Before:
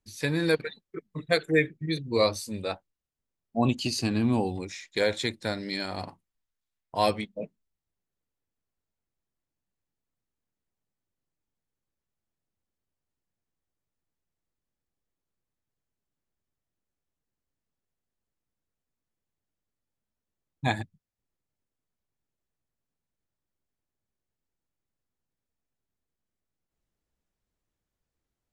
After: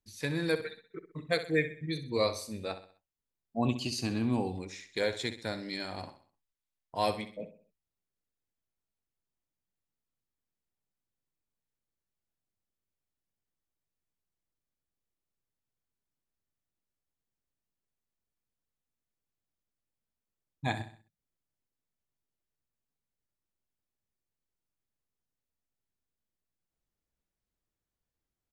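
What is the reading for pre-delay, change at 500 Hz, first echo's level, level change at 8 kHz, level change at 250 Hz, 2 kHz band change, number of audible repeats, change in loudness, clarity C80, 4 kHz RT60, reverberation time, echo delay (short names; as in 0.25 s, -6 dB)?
none, -5.0 dB, -12.0 dB, -5.0 dB, -5.0 dB, -5.0 dB, 3, -5.0 dB, none, none, none, 64 ms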